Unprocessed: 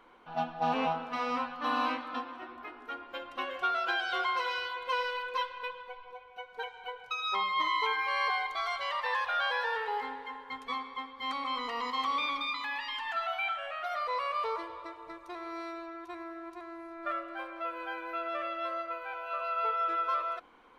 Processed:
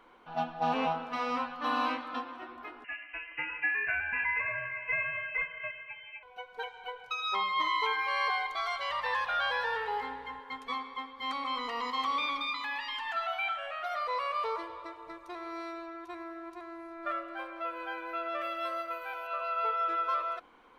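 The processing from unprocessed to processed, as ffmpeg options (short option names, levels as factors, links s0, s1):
-filter_complex "[0:a]asettb=1/sr,asplit=3[s0][s1][s2];[s0]atrim=end=2.844[s3];[s1]atrim=start=2.84:end=6.23,asetpts=PTS-STARTPTS,afade=t=in:d=0.004:c=qsin,afade=t=out:st=3.386:d=0.004:c=qsin,lowpass=f=2600:t=q:w=0.5098,lowpass=f=2600:t=q:w=0.6013,lowpass=f=2600:t=q:w=0.9,lowpass=f=2600:t=q:w=2.563,afreqshift=-3100[s4];[s2]atrim=start=6.226[s5];[s3][s4]acrossfade=d=0.004:c1=hsin:c2=qsin[s6];[s6][s5]acrossfade=d=0.004:c1=qsin:c2=hsin,asettb=1/sr,asplit=3[s7][s8][s9];[s7]atrim=end=8.894[s10];[s8]atrim=start=8.89:end=10.4,asetpts=PTS-STARTPTS,afade=t=in:d=0.004:c=qsin,afade=t=out:st=1.506:d=0.004:c=qsin,aeval=exprs='val(0)+0.000891*(sin(2*PI*60*n/s)+sin(2*PI*2*60*n/s)/2+sin(2*PI*3*60*n/s)/3+sin(2*PI*4*60*n/s)/4+sin(2*PI*5*60*n/s)/5)':c=same[s11];[s9]atrim=start=10.396[s12];[s10][s11]acrossfade=d=0.004:c1=hsin:c2=qsin[s13];[s13][s12]acrossfade=d=0.004:c1=qsin:c2=hsin,asettb=1/sr,asplit=3[s14][s15][s16];[s14]atrim=end=18.414[s17];[s15]atrim=start=18.41:end=19.27,asetpts=PTS-STARTPTS,afade=t=in:d=0.004:c=qsin,afade=t=out:st=0.856:d=0.004:c=qsin,aemphasis=mode=production:type=50fm[s18];[s16]atrim=start=19.266[s19];[s17][s18]acrossfade=d=0.004:c1=hsin:c2=qsin[s20];[s20][s19]acrossfade=d=0.004:c1=qsin:c2=hsin"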